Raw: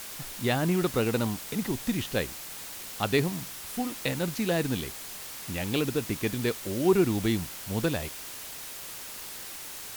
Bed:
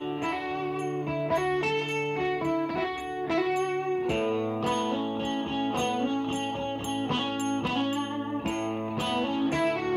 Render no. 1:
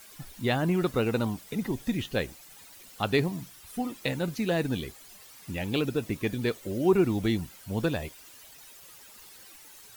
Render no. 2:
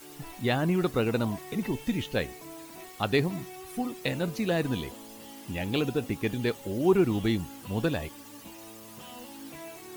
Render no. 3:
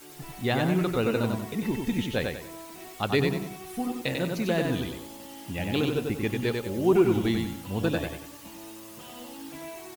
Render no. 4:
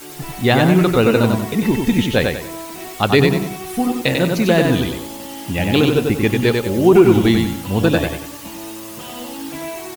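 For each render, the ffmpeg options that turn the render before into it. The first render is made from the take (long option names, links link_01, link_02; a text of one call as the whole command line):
ffmpeg -i in.wav -af "afftdn=noise_reduction=13:noise_floor=-41" out.wav
ffmpeg -i in.wav -i bed.wav -filter_complex "[1:a]volume=-17.5dB[link_01];[0:a][link_01]amix=inputs=2:normalize=0" out.wav
ffmpeg -i in.wav -af "aecho=1:1:94|188|282|376|470:0.631|0.227|0.0818|0.0294|0.0106" out.wav
ffmpeg -i in.wav -af "volume=12dB,alimiter=limit=-1dB:level=0:latency=1" out.wav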